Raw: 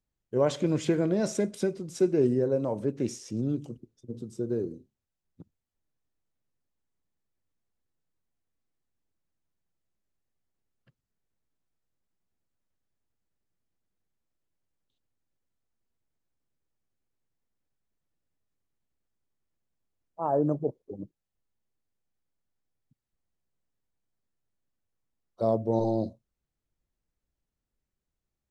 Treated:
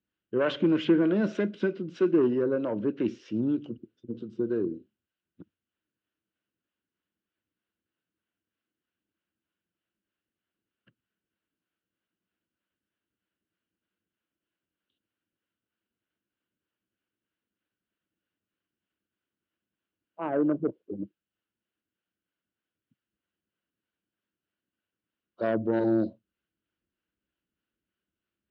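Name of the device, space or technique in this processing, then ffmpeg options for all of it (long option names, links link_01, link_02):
guitar amplifier with harmonic tremolo: -filter_complex "[0:a]acrossover=split=450[link_01][link_02];[link_01]aeval=exprs='val(0)*(1-0.5/2+0.5/2*cos(2*PI*3.2*n/s))':channel_layout=same[link_03];[link_02]aeval=exprs='val(0)*(1-0.5/2-0.5/2*cos(2*PI*3.2*n/s))':channel_layout=same[link_04];[link_03][link_04]amix=inputs=2:normalize=0,asoftclip=type=tanh:threshold=-21dB,highpass=100,equalizer=frequency=140:width_type=q:width=4:gain=-7,equalizer=frequency=200:width_type=q:width=4:gain=5,equalizer=frequency=320:width_type=q:width=4:gain=8,equalizer=frequency=800:width_type=q:width=4:gain=-6,equalizer=frequency=1500:width_type=q:width=4:gain=10,equalizer=frequency=2900:width_type=q:width=4:gain=10,lowpass=frequency=3800:width=0.5412,lowpass=frequency=3800:width=1.3066,volume=2dB"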